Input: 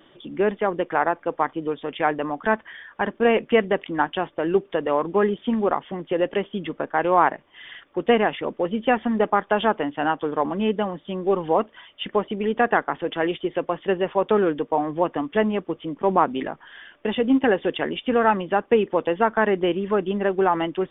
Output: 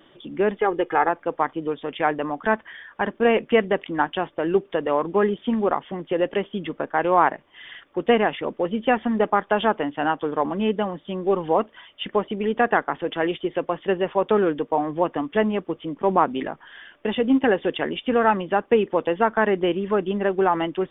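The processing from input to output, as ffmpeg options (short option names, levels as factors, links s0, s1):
-filter_complex "[0:a]asettb=1/sr,asplit=3[s0][s1][s2];[s0]atrim=end=0.594[s3];[s1]atrim=start=0.59:end=1.09,asetpts=PTS-STARTPTS,afade=t=in:d=0.004:c=qsin,afade=t=out:st=0.496:d=0.004:c=qsin,aecho=1:1:2.4:0.62,atrim=end_sample=22050[s4];[s2]atrim=start=1.086[s5];[s3][s4]acrossfade=d=0.004:c1=hsin:c2=qsin[s6];[s6][s5]acrossfade=d=0.004:c1=qsin:c2=hsin"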